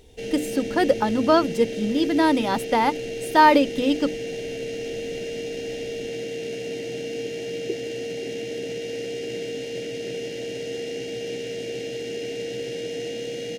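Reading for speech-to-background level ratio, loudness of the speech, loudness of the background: 9.5 dB, −21.5 LKFS, −31.0 LKFS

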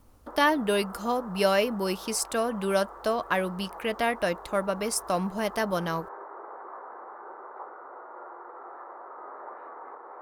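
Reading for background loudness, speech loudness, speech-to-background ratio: −43.5 LKFS, −28.0 LKFS, 15.5 dB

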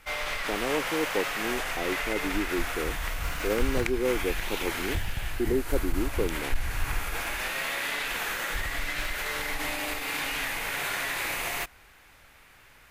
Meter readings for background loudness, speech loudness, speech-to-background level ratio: −31.0 LKFS, −32.5 LKFS, −1.5 dB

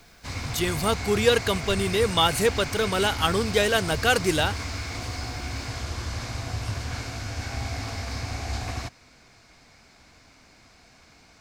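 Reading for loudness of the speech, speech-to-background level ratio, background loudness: −23.5 LKFS, 8.5 dB, −32.0 LKFS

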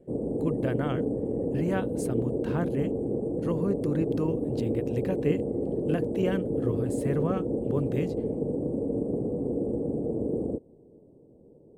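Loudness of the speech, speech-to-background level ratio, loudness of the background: −32.5 LKFS, −2.5 dB, −30.0 LKFS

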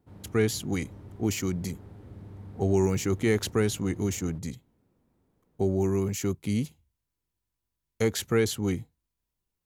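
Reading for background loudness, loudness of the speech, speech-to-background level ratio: −46.5 LKFS, −28.5 LKFS, 18.0 dB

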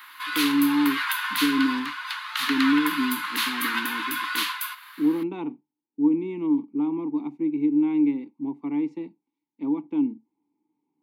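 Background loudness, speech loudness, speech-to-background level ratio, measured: −27.0 LKFS, −26.0 LKFS, 1.0 dB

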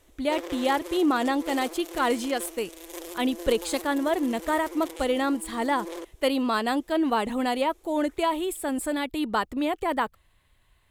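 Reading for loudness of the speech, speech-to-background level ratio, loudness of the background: −27.0 LKFS, 12.5 dB, −39.5 LKFS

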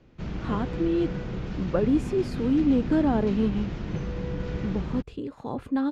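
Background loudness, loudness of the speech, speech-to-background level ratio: −33.0 LKFS, −27.0 LKFS, 6.0 dB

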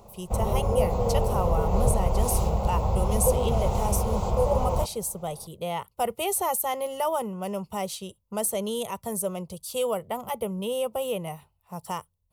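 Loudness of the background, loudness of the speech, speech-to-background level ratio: −26.5 LKFS, −30.5 LKFS, −4.0 dB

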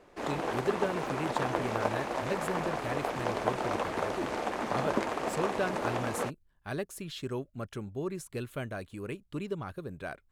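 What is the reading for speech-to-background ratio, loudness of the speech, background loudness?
−4.5 dB, −38.0 LKFS, −33.5 LKFS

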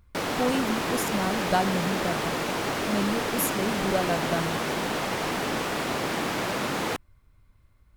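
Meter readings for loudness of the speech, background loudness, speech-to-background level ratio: −30.0 LKFS, −28.0 LKFS, −2.0 dB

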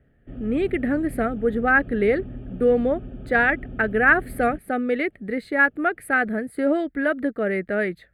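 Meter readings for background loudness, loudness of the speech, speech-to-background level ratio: −38.0 LKFS, −22.5 LKFS, 15.5 dB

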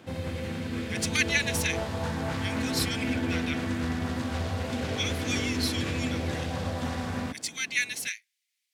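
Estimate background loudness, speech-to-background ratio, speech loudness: −31.5 LKFS, 0.0 dB, −31.5 LKFS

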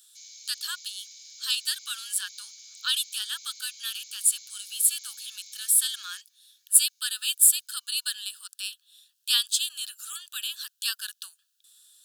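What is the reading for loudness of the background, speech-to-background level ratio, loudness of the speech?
−45.0 LKFS, 19.5 dB, −25.5 LKFS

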